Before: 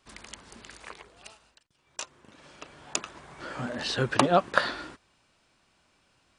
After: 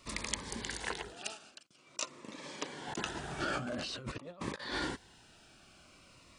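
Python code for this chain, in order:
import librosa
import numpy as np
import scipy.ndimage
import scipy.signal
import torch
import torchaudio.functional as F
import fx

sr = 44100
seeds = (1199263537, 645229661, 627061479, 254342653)

y = fx.cheby1_bandpass(x, sr, low_hz=220.0, high_hz=8300.0, order=2, at=(1.13, 2.88))
y = fx.over_compress(y, sr, threshold_db=-40.0, ratio=-1.0)
y = fx.notch_cascade(y, sr, direction='falling', hz=0.48)
y = y * librosa.db_to_amplitude(1.0)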